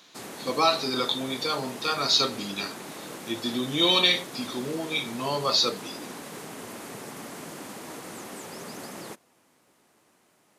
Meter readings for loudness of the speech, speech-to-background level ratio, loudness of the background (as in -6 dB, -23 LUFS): -25.0 LUFS, 14.5 dB, -39.5 LUFS